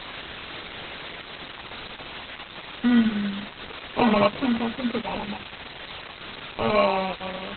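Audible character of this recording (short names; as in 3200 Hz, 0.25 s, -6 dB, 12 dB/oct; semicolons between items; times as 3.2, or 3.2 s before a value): aliases and images of a low sample rate 1700 Hz, jitter 0%; random-step tremolo; a quantiser's noise floor 6-bit, dither triangular; Opus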